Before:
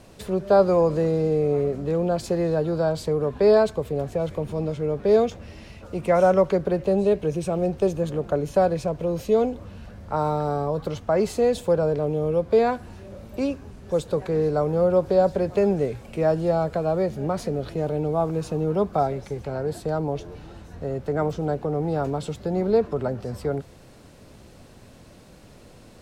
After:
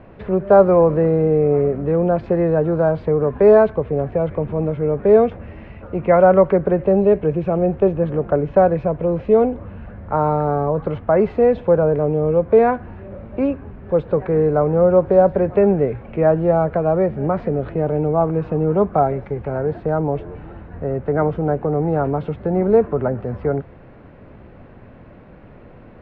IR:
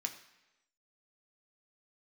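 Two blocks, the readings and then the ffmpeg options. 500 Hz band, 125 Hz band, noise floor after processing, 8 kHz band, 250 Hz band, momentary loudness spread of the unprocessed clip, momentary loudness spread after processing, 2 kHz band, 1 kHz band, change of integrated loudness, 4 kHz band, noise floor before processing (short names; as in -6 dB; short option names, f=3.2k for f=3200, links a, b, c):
+6.0 dB, +6.0 dB, -43 dBFS, n/a, +6.0 dB, 10 LU, 10 LU, +5.0 dB, +6.0 dB, +6.0 dB, under -10 dB, -48 dBFS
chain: -af "lowpass=f=2.2k:w=0.5412,lowpass=f=2.2k:w=1.3066,volume=6dB"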